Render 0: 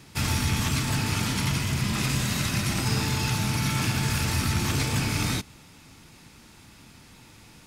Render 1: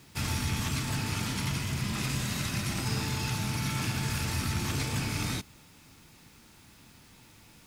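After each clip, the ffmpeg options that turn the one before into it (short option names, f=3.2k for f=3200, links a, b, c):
-af "acrusher=bits=8:mix=0:aa=0.000001,volume=-5.5dB"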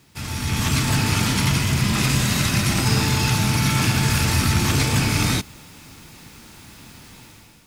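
-af "dynaudnorm=f=150:g=7:m=12dB"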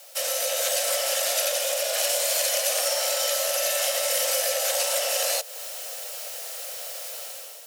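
-af "afreqshift=440,acompressor=threshold=-30dB:ratio=3,crystalizer=i=3:c=0"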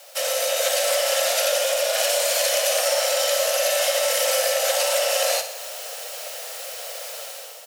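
-filter_complex "[0:a]highshelf=f=5.1k:g=-6.5,asplit=2[a][b];[b]aecho=0:1:61|122|183|244|305|366|427:0.316|0.187|0.11|0.0649|0.0383|0.0226|0.0133[c];[a][c]amix=inputs=2:normalize=0,volume=5dB"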